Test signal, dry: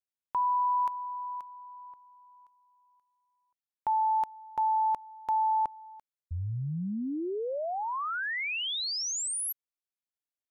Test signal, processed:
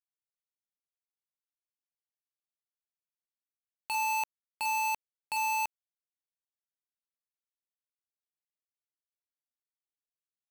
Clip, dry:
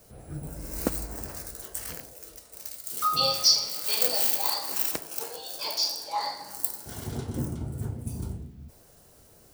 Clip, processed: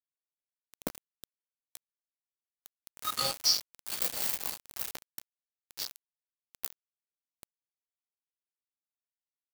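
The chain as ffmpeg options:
-af "adynamicequalizer=threshold=0.00224:dfrequency=370:dqfactor=2.1:tfrequency=370:tqfactor=2.1:attack=5:release=100:ratio=0.375:range=2.5:mode=cutabove:tftype=bell,aecho=1:1:15|31|79:0.501|0.355|0.251,aeval=exprs='val(0)*gte(abs(val(0)),0.106)':c=same,volume=-7dB"

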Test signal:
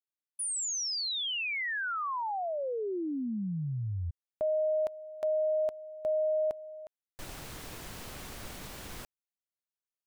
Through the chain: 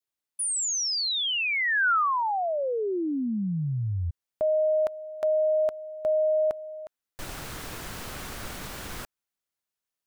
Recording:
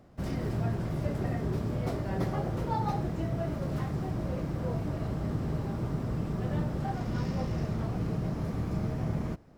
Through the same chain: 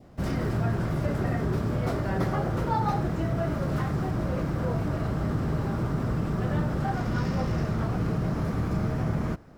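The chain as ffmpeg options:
-filter_complex "[0:a]asplit=2[a][b];[b]alimiter=level_in=3dB:limit=-24dB:level=0:latency=1,volume=-3dB,volume=-1dB[c];[a][c]amix=inputs=2:normalize=0,adynamicequalizer=threshold=0.00355:dfrequency=1400:dqfactor=1.9:tfrequency=1400:tqfactor=1.9:attack=5:release=100:ratio=0.375:range=3:mode=boostabove:tftype=bell"

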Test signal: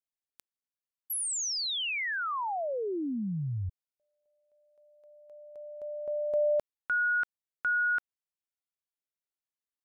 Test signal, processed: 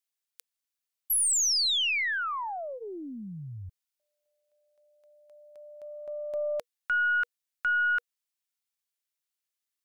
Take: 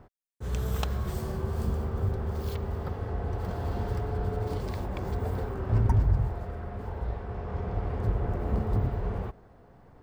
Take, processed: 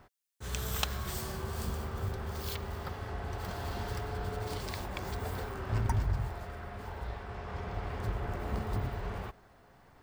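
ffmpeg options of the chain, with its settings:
-af "tiltshelf=f=1.1k:g=-7.5,bandreject=f=480:w=14,aeval=exprs='0.251*(cos(1*acos(clip(val(0)/0.251,-1,1)))-cos(1*PI/2))+0.0112*(cos(4*acos(clip(val(0)/0.251,-1,1)))-cos(4*PI/2))':c=same"

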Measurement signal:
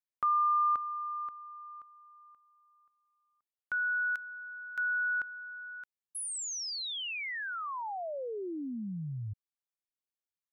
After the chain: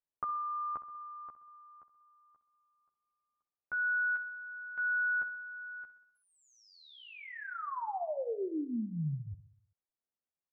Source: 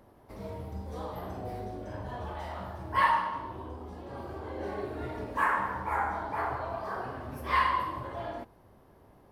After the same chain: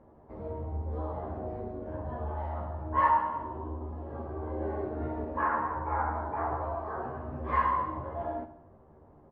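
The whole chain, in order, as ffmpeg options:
-filter_complex "[0:a]lowpass=1.1k,asplit=2[a][b];[b]adelay=13,volume=-3dB[c];[a][c]amix=inputs=2:normalize=0,aecho=1:1:64|128|192|256|320|384:0.188|0.111|0.0656|0.0387|0.0228|0.0135"

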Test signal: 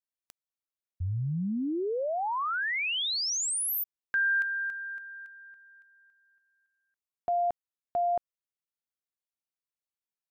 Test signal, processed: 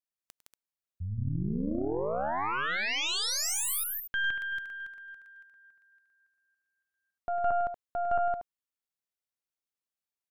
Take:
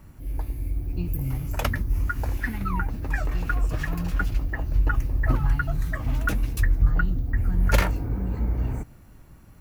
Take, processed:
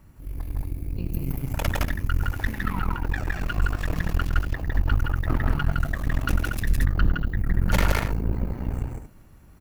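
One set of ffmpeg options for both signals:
-af "aecho=1:1:102|163.3|236.2:0.282|0.794|0.447,aeval=exprs='0.473*(cos(1*acos(clip(val(0)/0.473,-1,1)))-cos(1*PI/2))+0.0106*(cos(3*acos(clip(val(0)/0.473,-1,1)))-cos(3*PI/2))+0.0841*(cos(6*acos(clip(val(0)/0.473,-1,1)))-cos(6*PI/2))':c=same,volume=-3.5dB"

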